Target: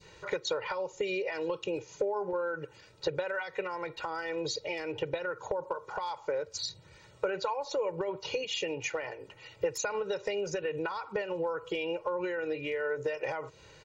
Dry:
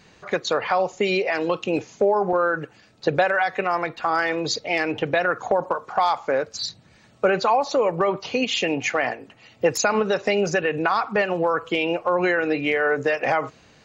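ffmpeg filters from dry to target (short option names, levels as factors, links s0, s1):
-af "acompressor=threshold=0.0355:ratio=6,adynamicequalizer=threshold=0.00398:dfrequency=1600:dqfactor=0.96:tfrequency=1600:tqfactor=0.96:attack=5:release=100:ratio=0.375:range=2:mode=cutabove:tftype=bell,aecho=1:1:2.1:0.94,volume=0.631"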